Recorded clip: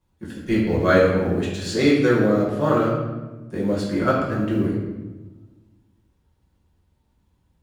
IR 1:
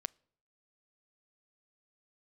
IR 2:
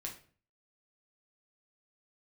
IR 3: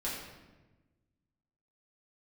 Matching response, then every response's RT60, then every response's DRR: 3; 0.60 s, 0.45 s, 1.2 s; 16.5 dB, -0.5 dB, -7.5 dB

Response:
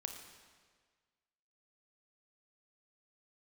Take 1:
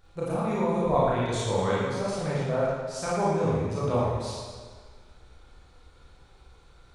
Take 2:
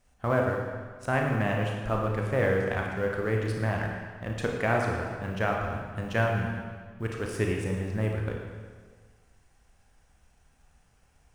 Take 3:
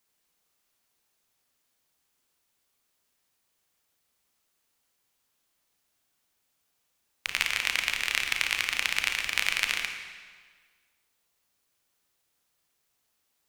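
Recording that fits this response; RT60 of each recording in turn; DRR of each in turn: 3; 1.6 s, 1.6 s, 1.6 s; -8.0 dB, 0.0 dB, 4.0 dB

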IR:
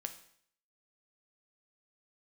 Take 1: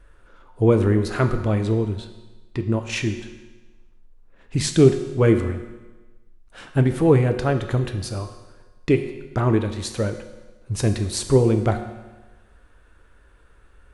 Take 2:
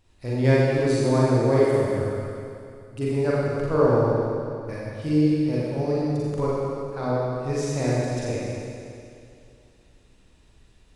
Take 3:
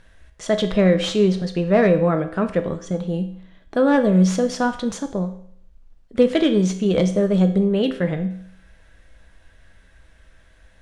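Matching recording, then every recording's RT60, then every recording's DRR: 3; 1.2 s, 2.5 s, 0.60 s; 6.5 dB, -7.5 dB, 6.0 dB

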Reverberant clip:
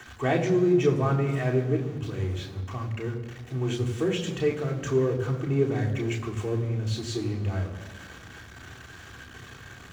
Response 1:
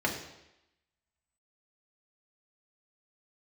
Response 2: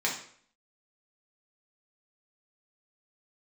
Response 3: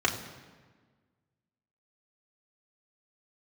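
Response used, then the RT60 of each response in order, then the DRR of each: 3; 0.90 s, 0.55 s, 1.5 s; -1.5 dB, -4.0 dB, -1.5 dB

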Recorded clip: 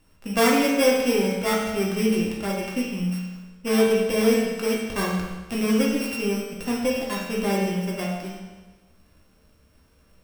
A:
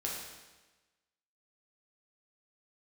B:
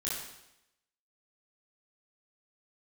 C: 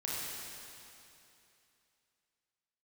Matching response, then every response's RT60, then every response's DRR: A; 1.2 s, 0.85 s, 2.8 s; -3.5 dB, -7.5 dB, -6.5 dB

